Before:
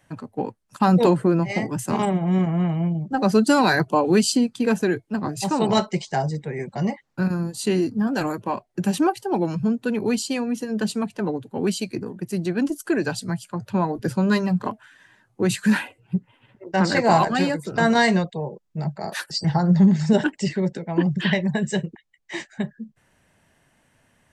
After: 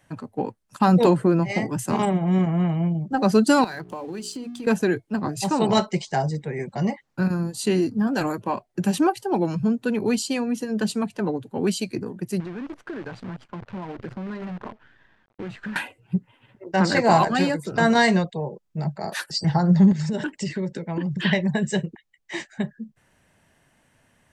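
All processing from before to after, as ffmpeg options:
-filter_complex "[0:a]asettb=1/sr,asplit=3[a][b][c];[a]atrim=end=3.644[d];[b]atrim=start=3.64:end=4.67,asetpts=PTS-STARTPTS,afade=t=in:d=0.004:c=qsin,afade=t=out:st=1.026:d=0.004:c=qsin,bandreject=f=60:t=h:w=6,bandreject=f=120:t=h:w=6,bandreject=f=180:t=h:w=6,bandreject=f=240:t=h:w=6,bandreject=f=300:t=h:w=6,bandreject=f=360:t=h:w=6,bandreject=f=420:t=h:w=6,acompressor=threshold=-30dB:ratio=6:attack=3.2:release=140:knee=1:detection=peak,aeval=exprs='sgn(val(0))*max(abs(val(0))-0.00211,0)':c=same[e];[c]atrim=start=4.666[f];[d][e]acrossfade=d=0.004:c1=hsin:c2=qsin[g];[g][f]acrossfade=d=0.004:c1=qsin:c2=hsin,asettb=1/sr,asplit=3[h][i][j];[h]atrim=end=12.404[k];[i]atrim=start=12.4:end=15.76,asetpts=PTS-STARTPTS,afade=t=in:d=0.004:c=qsin,afade=t=out:st=3.356:d=0.004:c=qsin,acompressor=threshold=-31dB:ratio=5:attack=3.2:release=140:knee=1:detection=peak,acrusher=bits=7:dc=4:mix=0:aa=0.000001,lowpass=2.2k[l];[j]atrim=start=15.756[m];[k][l]acrossfade=d=0.004:c1=hsin:c2=qsin[n];[n][m]acrossfade=d=0.004:c1=qsin:c2=hsin,asettb=1/sr,asplit=3[o][p][q];[o]atrim=end=19.924[r];[p]atrim=start=19.92:end=21.23,asetpts=PTS-STARTPTS,afade=t=in:d=0.004:c=qsin,afade=t=out:st=1.306:d=0.004:c=qsin,equalizer=f=730:t=o:w=0.21:g=-10,acompressor=threshold=-22dB:ratio=10:attack=3.2:release=140:knee=1:detection=peak[s];[q]atrim=start=21.226[t];[r][s]acrossfade=d=0.004:c1=hsin:c2=qsin[u];[u][t]acrossfade=d=0.004:c1=qsin:c2=hsin"

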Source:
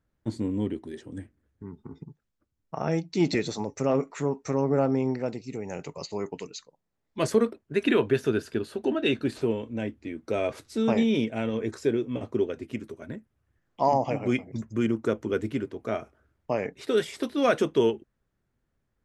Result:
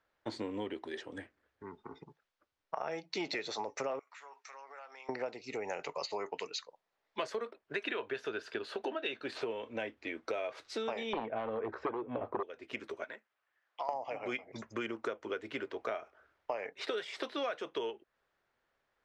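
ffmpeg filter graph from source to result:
-filter_complex "[0:a]asettb=1/sr,asplit=3[a][b][c];[a]atrim=end=3.994[d];[b]atrim=start=3.99:end=5.09,asetpts=PTS-STARTPTS,afade=t=in:d=0.004:c=qsin,afade=t=out:st=1.096:d=0.004:c=qsin,highpass=1.5k,acompressor=threshold=-53dB:ratio=5:attack=3.2:release=140:knee=1:detection=peak[e];[c]atrim=start=5.086[f];[d][e]acrossfade=d=0.004:c1=hsin:c2=qsin[g];[g][f]acrossfade=d=0.004:c1=qsin:c2=hsin,asettb=1/sr,asplit=3[h][i][j];[h]atrim=end=11.134[k];[i]atrim=start=11.13:end=12.43,asetpts=PTS-STARTPTS,afade=t=in:d=0.004:c=qsin,afade=t=out:st=1.296:d=0.004:c=qsin,lowpass=1.3k,lowshelf=f=120:g=10,aeval=exprs='0.237*sin(PI/2*2.24*val(0)/0.237)':c=same[l];[j]atrim=start=12.426[m];[k][l]acrossfade=d=0.004:c1=hsin:c2=qsin[n];[n][m]acrossfade=d=0.004:c1=qsin:c2=hsin,asettb=1/sr,asplit=3[o][p][q];[o]atrim=end=13.044[r];[p]atrim=start=13.04:end=13.89,asetpts=PTS-STARTPTS,afade=t=in:d=0.004:c=qsin,afade=t=out:st=0.846:d=0.004:c=qsin,highpass=f=1.4k:p=1,highshelf=f=3.5k:g=-6.5,acompressor=threshold=-38dB:ratio=3:attack=3.2:release=140:knee=1:detection=peak[s];[q]atrim=start=13.886[t];[r][s]acrossfade=d=0.004:c1=hsin:c2=qsin[u];[u][t]acrossfade=d=0.004:c1=qsin:c2=hsin,acrossover=split=480 5300:gain=0.0708 1 0.0794[v][w][x];[v][w][x]amix=inputs=3:normalize=0,acompressor=threshold=-41dB:ratio=10,volume=7dB"

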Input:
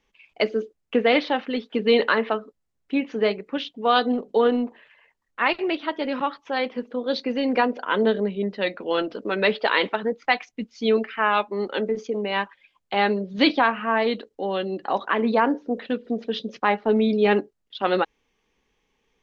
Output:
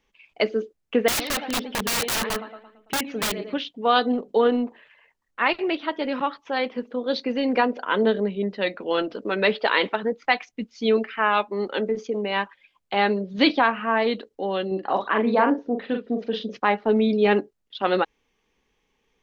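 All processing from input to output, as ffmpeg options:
-filter_complex "[0:a]asettb=1/sr,asplit=3[a][b][c];[a]atrim=end=1.084[d];[b]atrim=start=1.08:end=3.54,asetpts=PTS-STARTPTS,afade=t=in:d=0.004:c=qsin,afade=t=out:st=2.456:d=0.004:c=qsin,aecho=1:1:112|224|336|448|560:0.188|0.0923|0.0452|0.0222|0.0109,atrim=end_sample=108486,aphaser=in_gain=1:out_gain=1:delay=1.6:decay=0.38:speed=1.7:type=triangular,aeval=exprs='(mod(9.44*val(0)+1,2)-1)/9.44':c=same[e];[c]atrim=start=3.536[f];[d][e]acrossfade=d=0.004:c1=hsin:c2=qsin[g];[g][f]acrossfade=d=0.004:c1=qsin:c2=hsin,asettb=1/sr,asplit=3[h][i][j];[h]atrim=end=14.674[k];[i]atrim=start=14.67:end=16.55,asetpts=PTS-STARTPTS,afade=t=in:d=0.004:c=qsin,afade=t=out:st=1.876:d=0.004:c=qsin,highshelf=f=3.8k:g=-6.5,asplit=2[l][m];[m]adelay=42,volume=-5dB[n];[l][n]amix=inputs=2:normalize=0,atrim=end_sample=82908[o];[j]atrim=start=16.546[p];[k][o]acrossfade=d=0.004:c1=hsin:c2=qsin[q];[q][p]acrossfade=d=0.004:c1=qsin:c2=hsin"

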